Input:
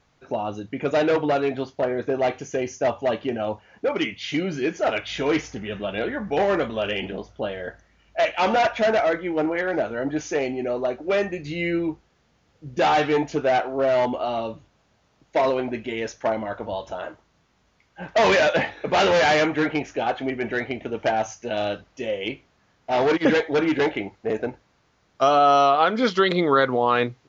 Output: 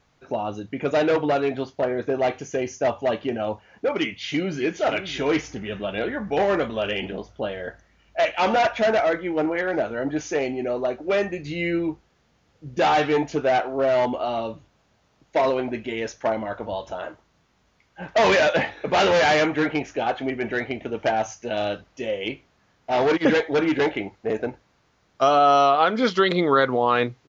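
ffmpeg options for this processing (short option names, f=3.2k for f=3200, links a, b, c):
-filter_complex "[0:a]asplit=2[a][b];[b]afade=t=in:st=4.03:d=0.01,afade=t=out:st=4.61:d=0.01,aecho=0:1:570|1140:0.281838|0.0281838[c];[a][c]amix=inputs=2:normalize=0"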